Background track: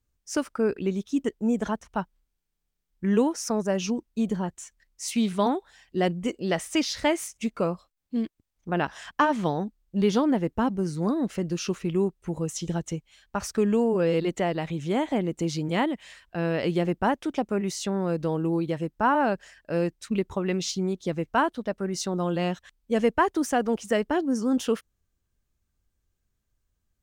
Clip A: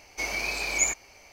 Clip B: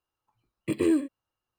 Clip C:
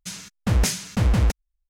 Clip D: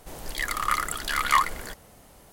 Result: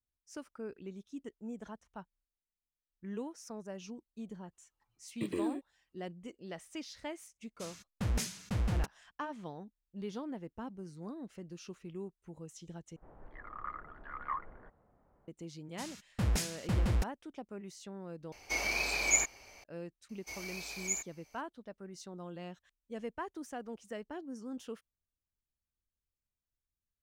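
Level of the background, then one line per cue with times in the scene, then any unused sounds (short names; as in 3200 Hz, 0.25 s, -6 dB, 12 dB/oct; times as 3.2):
background track -18.5 dB
4.53 add B -6 dB + compressor 2.5:1, threshold -27 dBFS
7.54 add C -13 dB, fades 0.10 s
12.96 replace with D -15.5 dB + LPF 1500 Hz 24 dB/oct
15.72 add C -11 dB, fades 0.10 s + notch 6200 Hz, Q 26
18.32 replace with A -3 dB
20.09 add A -16.5 dB + high shelf 5600 Hz +10.5 dB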